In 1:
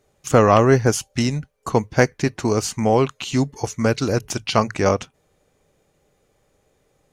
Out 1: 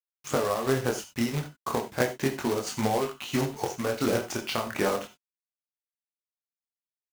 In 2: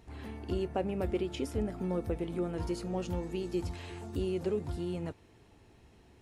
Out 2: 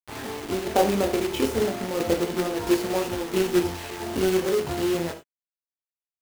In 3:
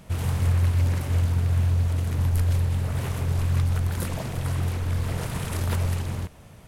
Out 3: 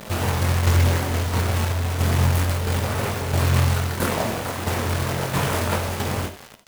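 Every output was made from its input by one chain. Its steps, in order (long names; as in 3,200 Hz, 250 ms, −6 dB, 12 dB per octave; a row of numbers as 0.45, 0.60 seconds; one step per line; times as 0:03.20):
high-pass filter 380 Hz 6 dB per octave
high-shelf EQ 3,000 Hz −11.5 dB
downward compressor 12 to 1, threshold −23 dBFS
chorus effect 0.34 Hz, delay 19.5 ms, depth 7.1 ms
shaped tremolo saw down 1.5 Hz, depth 55%
log-companded quantiser 4 bits
reverb whose tail is shaped and stops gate 110 ms flat, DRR 7.5 dB
normalise the peak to −6 dBFS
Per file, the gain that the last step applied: +6.0, +18.0, +17.5 decibels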